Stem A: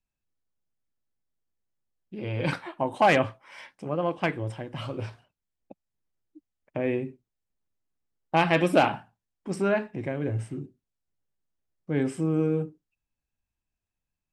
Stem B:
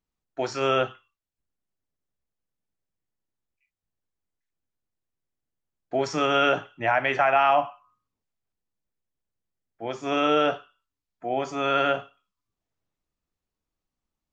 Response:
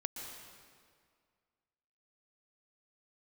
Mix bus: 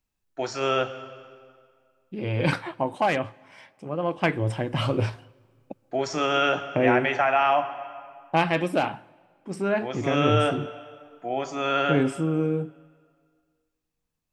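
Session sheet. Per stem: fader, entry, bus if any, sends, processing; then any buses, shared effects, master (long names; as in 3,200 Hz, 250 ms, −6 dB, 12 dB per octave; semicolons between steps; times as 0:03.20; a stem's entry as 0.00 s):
+1.0 dB, 0.00 s, send −23.5 dB, speech leveller 0.5 s
−4.0 dB, 0.00 s, send −7 dB, high-shelf EQ 5,900 Hz +5 dB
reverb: on, RT60 2.0 s, pre-delay 112 ms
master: no processing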